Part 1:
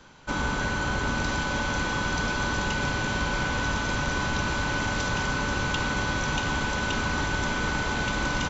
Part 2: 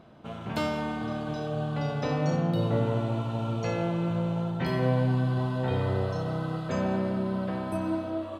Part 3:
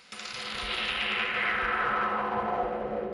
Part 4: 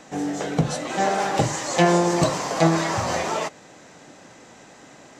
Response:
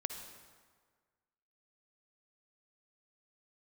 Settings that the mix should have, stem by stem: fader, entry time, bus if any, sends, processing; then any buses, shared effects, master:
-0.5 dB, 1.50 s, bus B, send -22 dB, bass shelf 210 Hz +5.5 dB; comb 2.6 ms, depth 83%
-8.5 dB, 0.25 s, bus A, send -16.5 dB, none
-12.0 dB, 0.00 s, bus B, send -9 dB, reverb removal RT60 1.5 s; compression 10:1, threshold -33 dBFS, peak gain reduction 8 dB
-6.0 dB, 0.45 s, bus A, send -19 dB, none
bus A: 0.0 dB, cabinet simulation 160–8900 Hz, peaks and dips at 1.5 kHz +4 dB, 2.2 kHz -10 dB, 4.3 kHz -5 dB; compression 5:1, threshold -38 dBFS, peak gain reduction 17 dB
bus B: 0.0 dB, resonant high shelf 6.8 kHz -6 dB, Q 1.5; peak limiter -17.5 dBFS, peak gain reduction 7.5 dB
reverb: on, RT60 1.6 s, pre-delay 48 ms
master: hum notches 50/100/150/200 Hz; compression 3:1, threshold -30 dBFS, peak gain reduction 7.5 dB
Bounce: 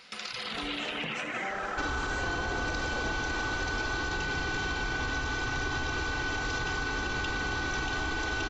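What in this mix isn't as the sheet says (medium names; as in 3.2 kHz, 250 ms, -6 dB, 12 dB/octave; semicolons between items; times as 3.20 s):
stem 1: missing bass shelf 210 Hz +5.5 dB; stem 3 -12.0 dB -> -0.5 dB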